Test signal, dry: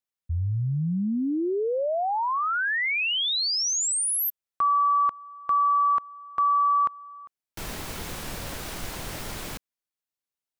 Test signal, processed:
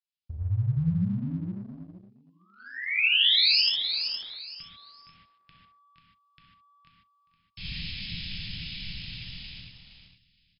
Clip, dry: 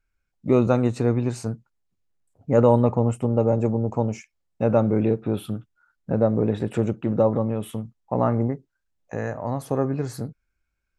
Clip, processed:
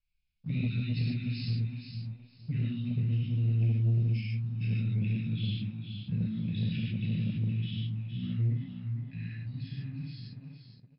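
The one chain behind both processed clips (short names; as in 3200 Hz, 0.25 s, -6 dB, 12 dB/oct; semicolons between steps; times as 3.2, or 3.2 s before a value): ending faded out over 3.09 s; compressor 1.5:1, threshold -31 dBFS; dynamic EQ 870 Hz, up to -5 dB, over -46 dBFS, Q 2.7; elliptic band-stop 190–2600 Hz, stop band 60 dB; low shelf 350 Hz -6.5 dB; feedback echo 0.466 s, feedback 25%, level -7.5 dB; non-linear reverb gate 0.17 s flat, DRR -6 dB; sample leveller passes 1; brick-wall FIR low-pass 5300 Hz; gain -2.5 dB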